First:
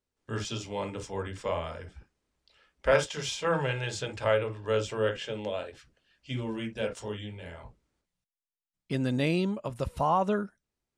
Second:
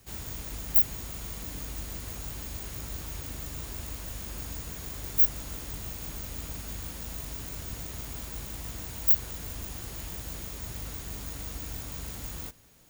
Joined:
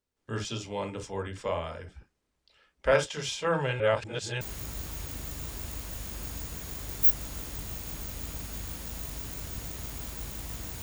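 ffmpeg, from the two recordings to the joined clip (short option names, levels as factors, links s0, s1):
-filter_complex "[0:a]apad=whole_dur=10.82,atrim=end=10.82,asplit=2[s0][s1];[s0]atrim=end=3.802[s2];[s1]atrim=start=3.798:end=4.412,asetpts=PTS-STARTPTS,areverse[s3];[1:a]atrim=start=2.558:end=8.97[s4];[s2][s3]acrossfade=d=0.004:c1=hsin:c2=hsin[s5];[s5][s4]acrossfade=d=0.004:c1=hsin:c2=hsin"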